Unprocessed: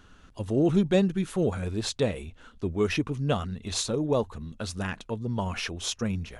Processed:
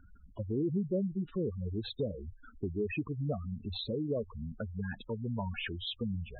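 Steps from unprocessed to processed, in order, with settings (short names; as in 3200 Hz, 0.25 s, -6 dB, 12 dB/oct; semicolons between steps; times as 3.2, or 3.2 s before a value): steep low-pass 4000 Hz 96 dB/oct; spectral gate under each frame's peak -10 dB strong; compressor 2:1, threshold -36 dBFS, peak gain reduction 10 dB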